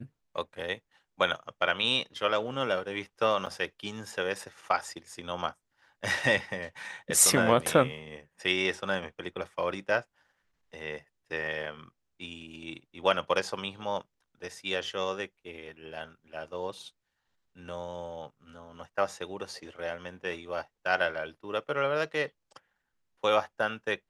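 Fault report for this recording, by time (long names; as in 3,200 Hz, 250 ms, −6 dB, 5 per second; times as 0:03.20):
0:03.46–0:03.47: drop-out 6.4 ms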